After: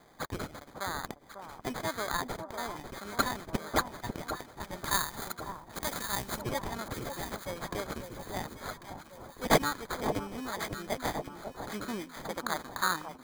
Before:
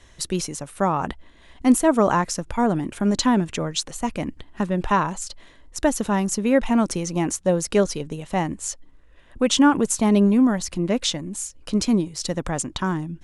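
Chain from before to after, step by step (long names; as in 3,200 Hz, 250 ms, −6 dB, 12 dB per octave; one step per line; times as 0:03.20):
band-pass filter sweep 3,100 Hz → 1,400 Hz, 0:10.23–0:11.53
decimation without filtering 16×
0:04.81–0:06.39: high-shelf EQ 4,600 Hz +11 dB
delay that swaps between a low-pass and a high-pass 547 ms, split 1,100 Hz, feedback 69%, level −7 dB
level +3.5 dB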